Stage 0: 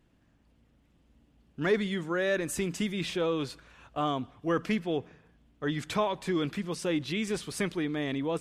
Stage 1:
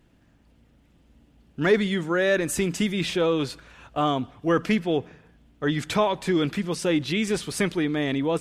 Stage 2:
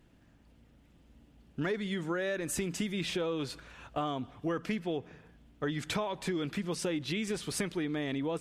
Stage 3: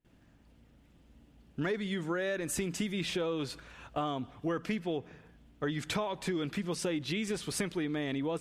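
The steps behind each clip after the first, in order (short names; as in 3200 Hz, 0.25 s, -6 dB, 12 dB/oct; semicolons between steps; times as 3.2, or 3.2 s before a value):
notch 1100 Hz, Q 18; gain +6.5 dB
compressor 6:1, threshold -28 dBFS, peak gain reduction 13.5 dB; gain -2.5 dB
gate with hold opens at -54 dBFS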